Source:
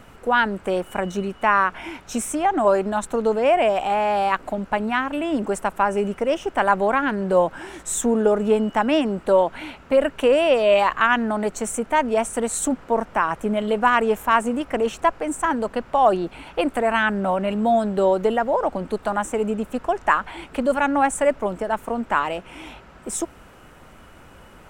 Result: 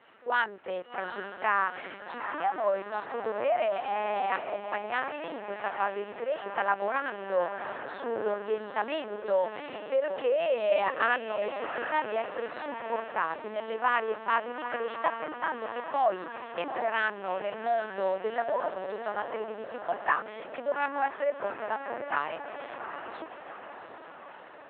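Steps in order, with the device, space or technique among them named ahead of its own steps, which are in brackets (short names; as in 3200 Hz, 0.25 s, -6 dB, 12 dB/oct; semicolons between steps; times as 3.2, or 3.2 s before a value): 2.5–3.92 bell 110 Hz -6 dB 1.1 oct; diffused feedback echo 0.783 s, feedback 58%, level -7.5 dB; talking toy (LPC vocoder at 8 kHz pitch kept; HPF 400 Hz 12 dB/oct; bell 1800 Hz +4 dB 0.37 oct); gain -9 dB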